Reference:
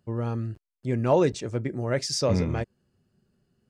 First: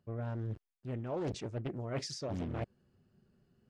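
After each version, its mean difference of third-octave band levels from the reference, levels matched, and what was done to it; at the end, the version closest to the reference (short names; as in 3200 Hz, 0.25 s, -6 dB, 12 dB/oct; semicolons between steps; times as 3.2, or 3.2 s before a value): 4.5 dB: LPF 3400 Hz 6 dB/oct; reverse; compressor 10:1, threshold -34 dBFS, peak gain reduction 18 dB; reverse; Doppler distortion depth 0.9 ms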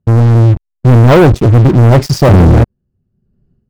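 6.5 dB: tilt -4.5 dB/oct; sample leveller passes 5; AGC gain up to 14.5 dB; gain -1 dB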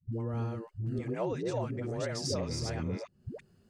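9.5 dB: reverse delay 0.328 s, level -1 dB; compressor 6:1, threshold -35 dBFS, peak gain reduction 17.5 dB; dispersion highs, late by 0.128 s, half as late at 370 Hz; gain +3 dB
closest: first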